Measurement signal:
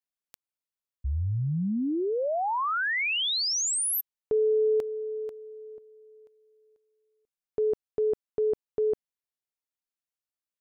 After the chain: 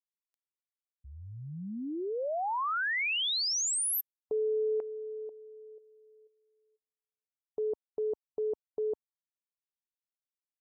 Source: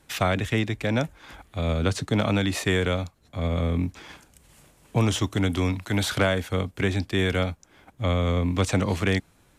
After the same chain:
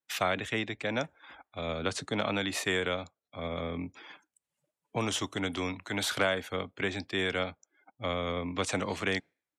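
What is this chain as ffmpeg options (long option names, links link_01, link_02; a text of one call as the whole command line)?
ffmpeg -i in.wav -af "highpass=frequency=460:poles=1,afftdn=noise_reduction=29:noise_floor=-49,volume=-3dB" out.wav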